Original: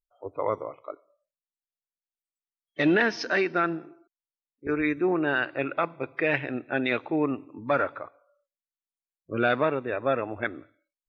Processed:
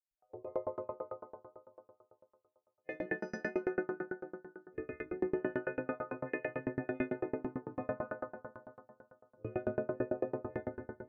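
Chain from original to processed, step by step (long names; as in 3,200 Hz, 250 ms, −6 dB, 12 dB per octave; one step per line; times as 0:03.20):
every partial snapped to a pitch grid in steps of 3 semitones
flat-topped bell 2,200 Hz −8.5 dB 2.5 octaves, from 0:09.47 −15 dB
downward compressor, threshold −30 dBFS, peak gain reduction 11 dB
high-frequency loss of the air 170 metres
convolution reverb RT60 2.8 s, pre-delay 88 ms
tremolo with a ramp in dB decaying 9 Hz, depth 32 dB
level +4 dB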